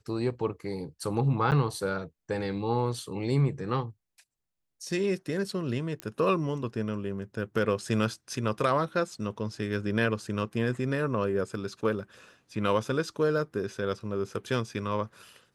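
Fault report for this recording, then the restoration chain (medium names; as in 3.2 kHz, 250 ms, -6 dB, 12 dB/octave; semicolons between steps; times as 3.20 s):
1.51–1.52 s: dropout 9 ms
6.00 s: pop -20 dBFS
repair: de-click; interpolate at 1.51 s, 9 ms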